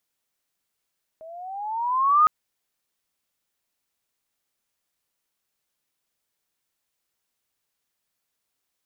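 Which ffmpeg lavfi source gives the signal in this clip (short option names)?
-f lavfi -i "aevalsrc='pow(10,(-12+27*(t/1.06-1))/20)*sin(2*PI*631*1.06/(12*log(2)/12)*(exp(12*log(2)/12*t/1.06)-1))':d=1.06:s=44100"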